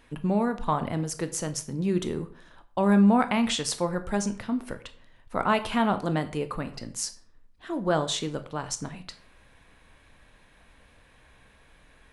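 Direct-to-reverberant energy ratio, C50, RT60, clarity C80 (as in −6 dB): 9.5 dB, 14.5 dB, 0.45 s, 18.0 dB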